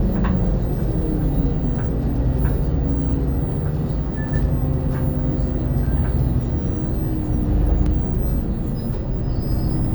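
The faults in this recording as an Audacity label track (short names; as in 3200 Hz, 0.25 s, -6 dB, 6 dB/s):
5.860000	5.860000	gap 4.3 ms
7.860000	7.860000	gap 3.5 ms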